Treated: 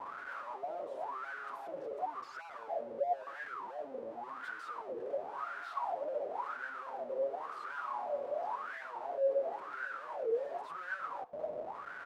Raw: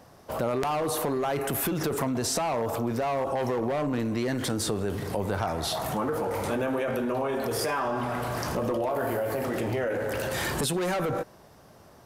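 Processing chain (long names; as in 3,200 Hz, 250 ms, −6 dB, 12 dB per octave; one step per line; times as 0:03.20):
0:02.11–0:04.36: spectral envelope exaggerated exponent 3
high-pass filter 310 Hz 12 dB per octave
comb filter 7.2 ms, depth 90%
downward compressor 16 to 1, threshold −37 dBFS, peak gain reduction 17 dB
comparator with hysteresis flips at −49 dBFS
LFO wah 0.94 Hz 530–1,500 Hz, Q 14
echo with shifted repeats 100 ms, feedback 33%, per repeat −74 Hz, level −19.5 dB
wow of a warped record 45 rpm, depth 250 cents
level +15.5 dB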